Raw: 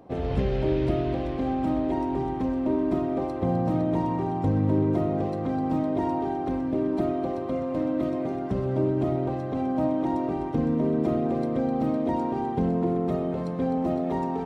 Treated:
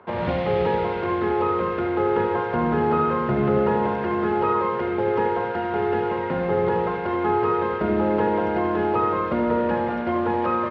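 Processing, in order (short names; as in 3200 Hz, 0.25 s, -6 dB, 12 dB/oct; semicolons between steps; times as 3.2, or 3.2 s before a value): octaver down 2 oct, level -5 dB; wide varispeed 1.35×; bell 290 Hz -13 dB 1.1 oct; in parallel at -11 dB: requantised 6-bit, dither none; on the sum: speaker cabinet 160–3300 Hz, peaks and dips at 220 Hz +6 dB, 370 Hz +5 dB, 720 Hz -3 dB, 1400 Hz +3 dB, 2000 Hz +6 dB; on a send: echo 76 ms -8.5 dB; on the sum: gain +4 dB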